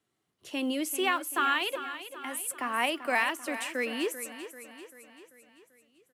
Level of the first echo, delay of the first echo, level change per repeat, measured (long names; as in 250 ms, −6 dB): −12.0 dB, 390 ms, −5.5 dB